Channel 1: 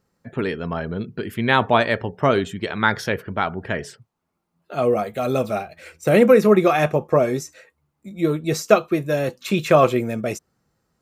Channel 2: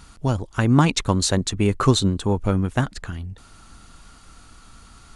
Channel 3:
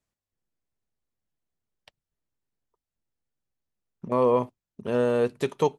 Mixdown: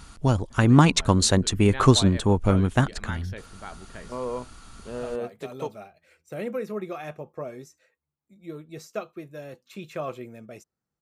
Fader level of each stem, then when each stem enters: -18.0, +0.5, -10.0 dB; 0.25, 0.00, 0.00 s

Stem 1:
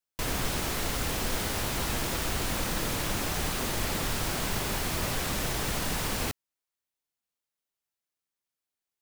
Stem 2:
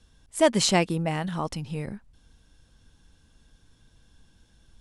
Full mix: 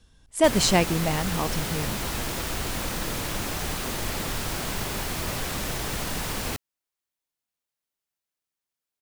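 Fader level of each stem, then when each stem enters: +0.5, +1.0 dB; 0.25, 0.00 s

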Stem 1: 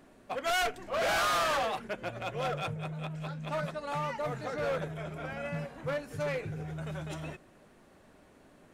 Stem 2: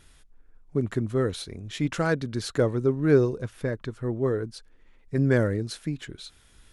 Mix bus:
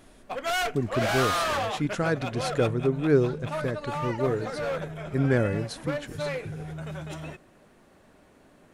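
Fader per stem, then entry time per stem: +2.0, -1.5 dB; 0.00, 0.00 s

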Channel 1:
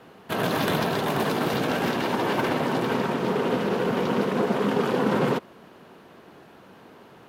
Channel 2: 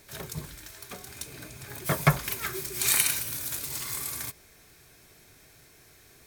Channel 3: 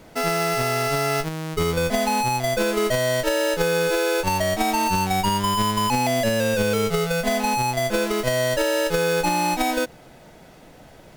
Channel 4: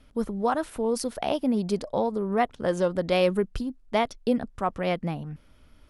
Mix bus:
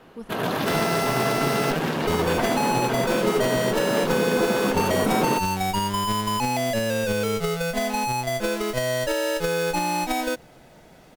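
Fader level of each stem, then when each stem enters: -1.0, -17.5, -3.0, -10.0 dB; 0.00, 2.05, 0.50, 0.00 s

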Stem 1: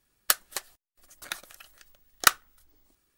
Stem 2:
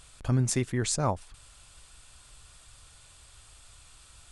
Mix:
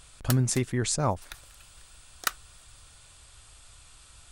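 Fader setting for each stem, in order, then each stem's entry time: -9.5, +1.0 dB; 0.00, 0.00 s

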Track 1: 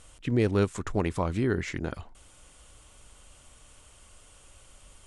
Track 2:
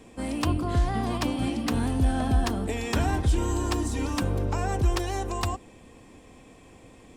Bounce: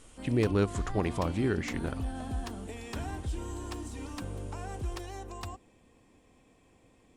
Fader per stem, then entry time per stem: -2.5, -12.0 dB; 0.00, 0.00 s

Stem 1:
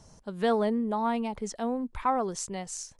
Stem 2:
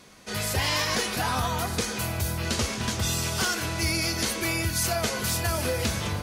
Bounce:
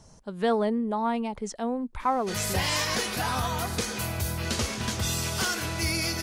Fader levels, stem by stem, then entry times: +1.0, -1.5 dB; 0.00, 2.00 s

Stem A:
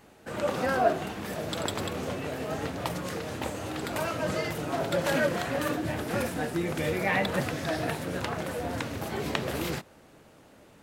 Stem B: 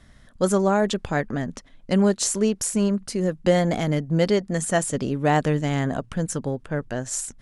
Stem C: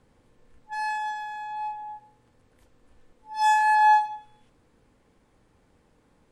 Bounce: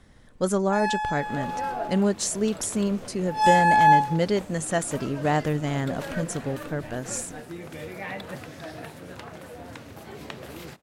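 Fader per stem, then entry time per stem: -8.5, -3.5, +1.5 dB; 0.95, 0.00, 0.00 s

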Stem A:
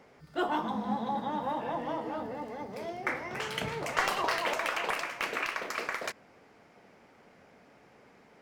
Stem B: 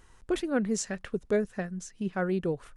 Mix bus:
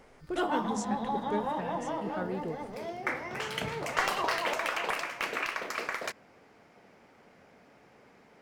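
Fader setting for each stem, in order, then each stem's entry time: 0.0, -7.5 dB; 0.00, 0.00 s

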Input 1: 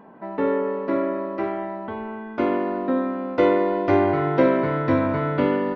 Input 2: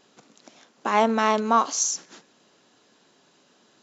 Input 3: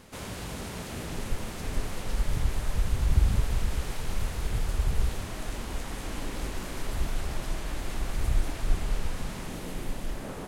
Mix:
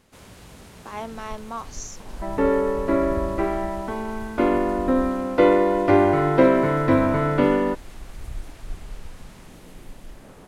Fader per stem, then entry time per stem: +2.0, -13.5, -8.0 dB; 2.00, 0.00, 0.00 s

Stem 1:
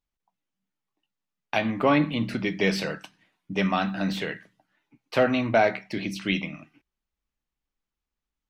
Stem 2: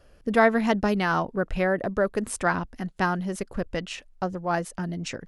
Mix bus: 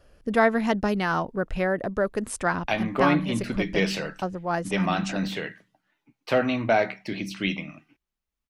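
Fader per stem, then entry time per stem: -1.0, -1.0 dB; 1.15, 0.00 s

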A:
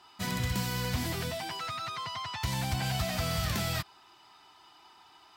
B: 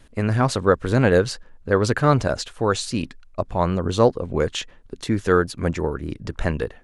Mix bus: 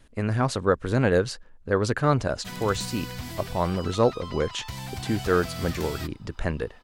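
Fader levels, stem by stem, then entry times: -4.0, -4.5 dB; 2.25, 0.00 s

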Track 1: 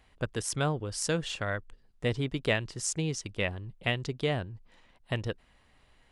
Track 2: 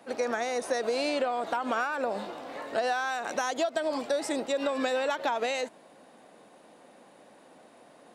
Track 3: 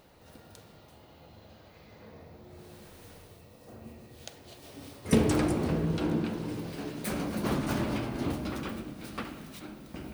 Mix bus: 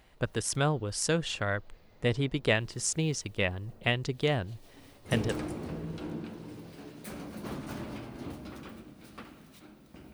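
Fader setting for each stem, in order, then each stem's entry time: +1.5 dB, off, -9.0 dB; 0.00 s, off, 0.00 s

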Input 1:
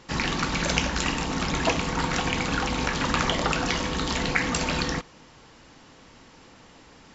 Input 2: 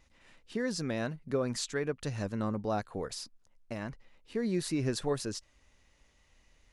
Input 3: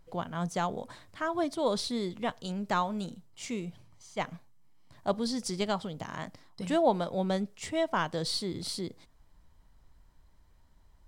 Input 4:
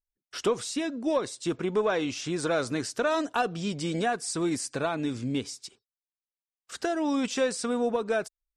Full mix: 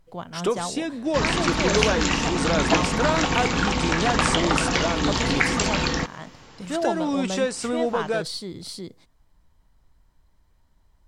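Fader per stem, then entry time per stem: +3.0, -16.0, 0.0, +2.0 dB; 1.05, 0.00, 0.00, 0.00 s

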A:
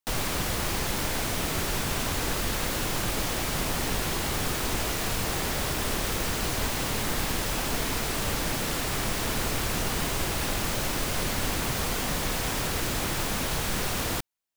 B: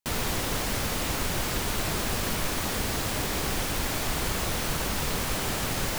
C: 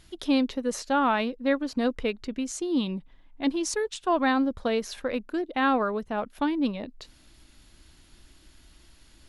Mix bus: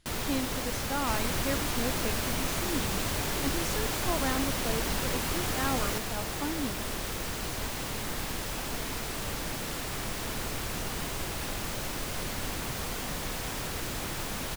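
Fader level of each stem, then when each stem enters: -6.0, -4.5, -9.0 dB; 1.00, 0.00, 0.00 s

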